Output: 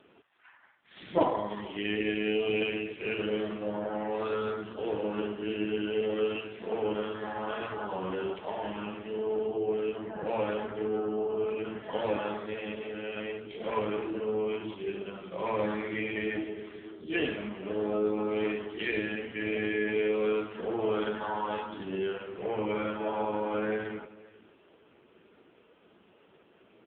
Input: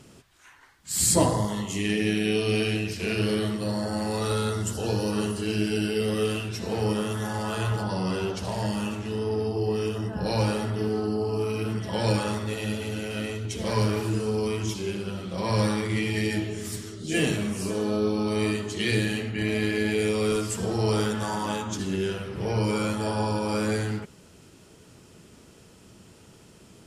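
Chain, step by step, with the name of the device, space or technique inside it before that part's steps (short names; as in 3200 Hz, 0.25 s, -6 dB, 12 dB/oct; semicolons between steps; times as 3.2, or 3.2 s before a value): satellite phone (BPF 340–3200 Hz; echo 0.485 s -21 dB; AMR-NB 5.9 kbps 8000 Hz)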